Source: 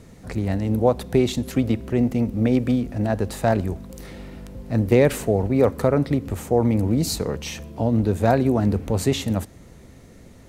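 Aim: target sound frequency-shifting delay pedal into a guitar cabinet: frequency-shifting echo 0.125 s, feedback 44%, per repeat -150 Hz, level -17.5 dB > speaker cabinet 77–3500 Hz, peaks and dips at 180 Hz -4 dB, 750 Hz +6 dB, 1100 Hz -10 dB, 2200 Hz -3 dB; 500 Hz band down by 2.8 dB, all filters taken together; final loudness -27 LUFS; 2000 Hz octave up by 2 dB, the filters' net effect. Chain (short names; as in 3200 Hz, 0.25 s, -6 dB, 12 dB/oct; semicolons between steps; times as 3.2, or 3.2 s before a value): bell 500 Hz -4.5 dB; bell 2000 Hz +5 dB; frequency-shifting echo 0.125 s, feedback 44%, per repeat -150 Hz, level -17.5 dB; speaker cabinet 77–3500 Hz, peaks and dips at 180 Hz -4 dB, 750 Hz +6 dB, 1100 Hz -10 dB, 2200 Hz -3 dB; gain -3.5 dB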